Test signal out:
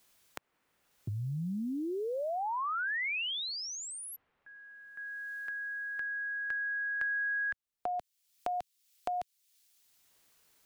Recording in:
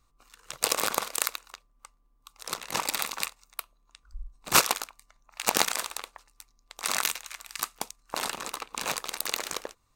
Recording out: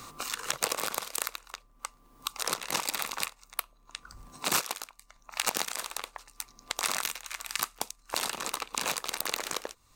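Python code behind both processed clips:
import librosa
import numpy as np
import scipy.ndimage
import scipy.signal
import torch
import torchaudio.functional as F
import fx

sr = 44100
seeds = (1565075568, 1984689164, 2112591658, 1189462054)

y = fx.band_squash(x, sr, depth_pct=100)
y = F.gain(torch.from_numpy(y), -2.5).numpy()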